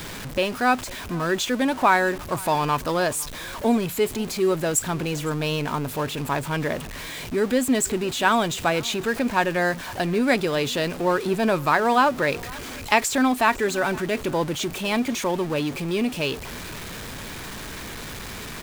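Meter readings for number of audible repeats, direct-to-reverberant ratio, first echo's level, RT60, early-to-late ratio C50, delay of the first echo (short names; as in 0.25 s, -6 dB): 1, none, -22.5 dB, none, none, 0.505 s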